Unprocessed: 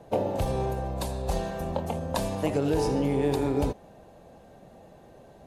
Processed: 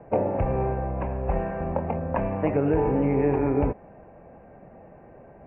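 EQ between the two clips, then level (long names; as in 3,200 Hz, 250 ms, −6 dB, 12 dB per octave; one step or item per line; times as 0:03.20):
Butterworth low-pass 2,500 Hz 72 dB per octave
+3.0 dB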